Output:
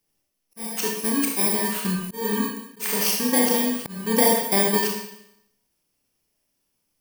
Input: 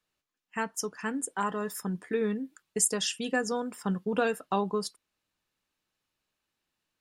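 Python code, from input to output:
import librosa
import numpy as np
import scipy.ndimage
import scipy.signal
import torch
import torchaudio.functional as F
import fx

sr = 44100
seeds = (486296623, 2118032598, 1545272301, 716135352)

y = fx.bit_reversed(x, sr, seeds[0], block=32)
y = fx.rev_schroeder(y, sr, rt60_s=0.78, comb_ms=25, drr_db=-0.5)
y = fx.auto_swell(y, sr, attack_ms=327.0)
y = y * 10.0 ** (6.5 / 20.0)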